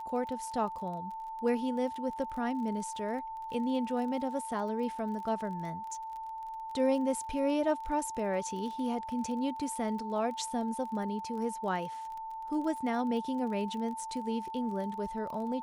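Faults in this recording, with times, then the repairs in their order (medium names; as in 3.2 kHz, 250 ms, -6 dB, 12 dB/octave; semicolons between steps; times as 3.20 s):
crackle 25 per s -40 dBFS
whine 890 Hz -38 dBFS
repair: de-click; band-stop 890 Hz, Q 30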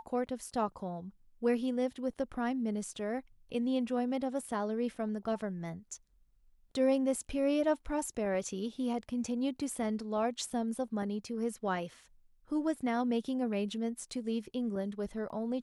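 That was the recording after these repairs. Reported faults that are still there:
nothing left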